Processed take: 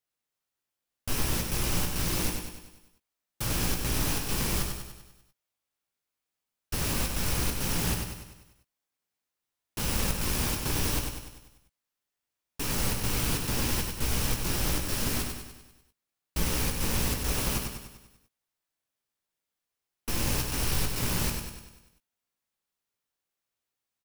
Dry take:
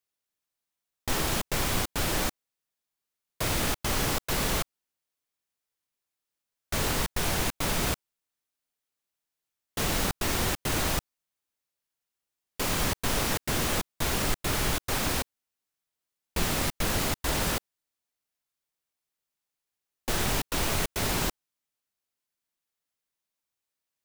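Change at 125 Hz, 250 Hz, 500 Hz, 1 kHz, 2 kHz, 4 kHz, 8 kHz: +1.5 dB, -0.5 dB, -4.5 dB, -5.0 dB, -4.0 dB, -2.0 dB, 0.0 dB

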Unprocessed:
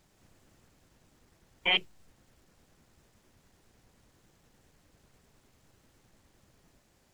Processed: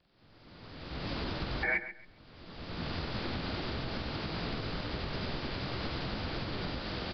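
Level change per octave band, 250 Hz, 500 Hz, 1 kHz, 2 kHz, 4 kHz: +17.0 dB, +9.5 dB, +6.5 dB, +2.0 dB, -3.0 dB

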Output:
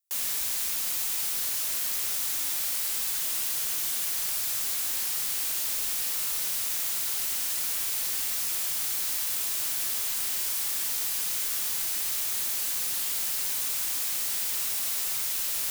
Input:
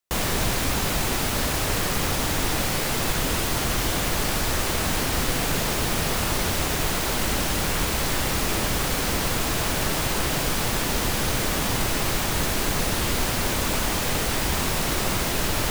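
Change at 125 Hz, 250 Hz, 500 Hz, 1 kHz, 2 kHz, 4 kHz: under -25 dB, -26.5 dB, -22.5 dB, -17.5 dB, -12.5 dB, -6.5 dB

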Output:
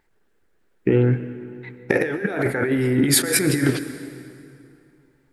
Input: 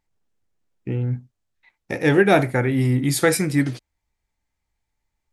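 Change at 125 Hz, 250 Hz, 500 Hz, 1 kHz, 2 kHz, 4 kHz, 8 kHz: -1.0 dB, +0.5 dB, -1.0 dB, -8.0 dB, -1.0 dB, +4.5 dB, +6.0 dB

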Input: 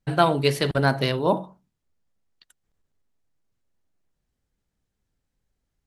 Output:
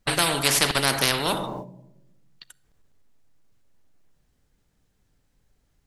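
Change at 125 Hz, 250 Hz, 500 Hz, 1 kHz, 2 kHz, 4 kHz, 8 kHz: -6.5 dB, -4.5 dB, -6.0 dB, -2.5 dB, +3.5 dB, +7.5 dB, +17.5 dB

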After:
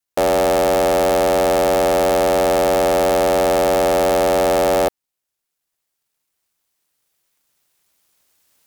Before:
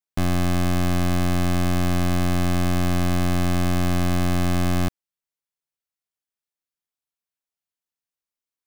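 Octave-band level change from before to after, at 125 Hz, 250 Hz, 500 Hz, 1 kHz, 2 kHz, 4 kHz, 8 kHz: -11.0 dB, -1.0 dB, +17.5 dB, +12.0 dB, +5.5 dB, +6.0 dB, +7.5 dB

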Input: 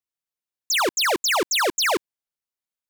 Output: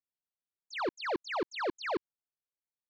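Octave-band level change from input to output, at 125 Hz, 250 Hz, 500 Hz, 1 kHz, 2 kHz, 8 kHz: -6.5 dB, -8.0 dB, -9.5 dB, -12.0 dB, -15.5 dB, -33.0 dB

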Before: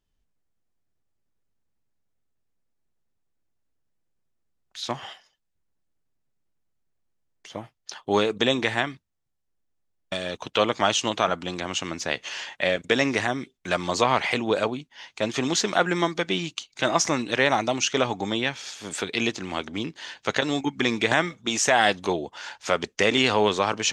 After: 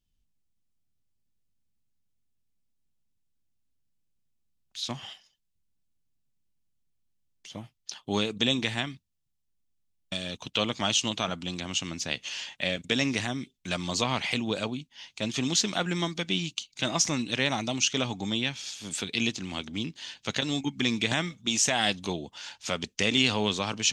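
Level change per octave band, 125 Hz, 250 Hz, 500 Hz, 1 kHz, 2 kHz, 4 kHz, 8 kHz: 0.0 dB, -2.5 dB, -9.5 dB, -9.5 dB, -6.0 dB, -0.5 dB, 0.0 dB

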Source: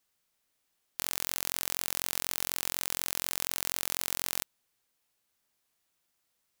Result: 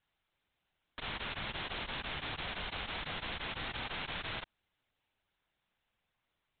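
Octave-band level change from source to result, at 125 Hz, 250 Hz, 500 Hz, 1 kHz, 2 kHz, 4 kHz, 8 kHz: +5.0 dB, +1.0 dB, -0.5 dB, +1.0 dB, +1.0 dB, -3.0 dB, under -40 dB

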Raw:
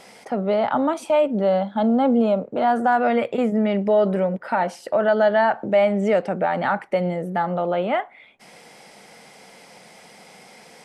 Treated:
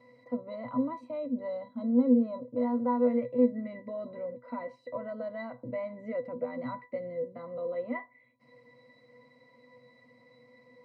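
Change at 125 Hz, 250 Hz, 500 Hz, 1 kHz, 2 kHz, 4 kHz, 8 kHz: -18.0 dB, -7.0 dB, -13.0 dB, -18.5 dB, -19.5 dB, under -20 dB, no reading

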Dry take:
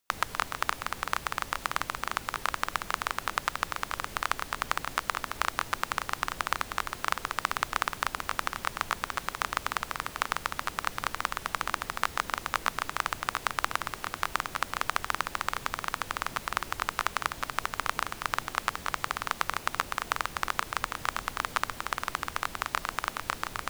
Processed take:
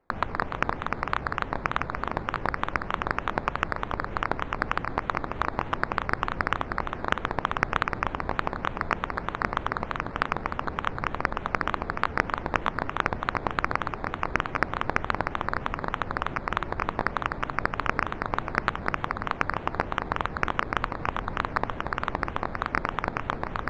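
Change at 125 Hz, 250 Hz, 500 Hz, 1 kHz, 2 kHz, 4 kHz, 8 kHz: +11.0 dB, +11.0 dB, +9.0 dB, +3.0 dB, +2.5 dB, -4.5 dB, under -15 dB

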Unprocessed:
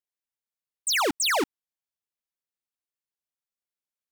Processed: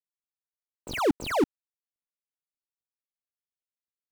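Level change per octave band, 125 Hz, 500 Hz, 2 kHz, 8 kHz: +9.5 dB, +2.0 dB, -8.0 dB, -16.0 dB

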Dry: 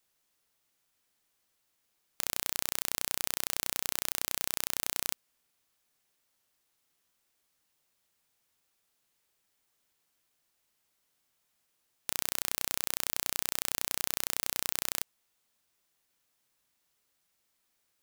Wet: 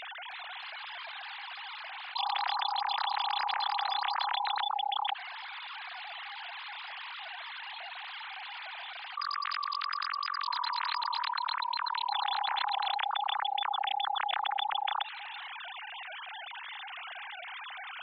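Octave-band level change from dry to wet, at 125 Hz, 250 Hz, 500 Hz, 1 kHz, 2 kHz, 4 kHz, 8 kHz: under -25 dB, under -20 dB, -2.0 dB, +18.0 dB, +6.5 dB, +6.5 dB, under -40 dB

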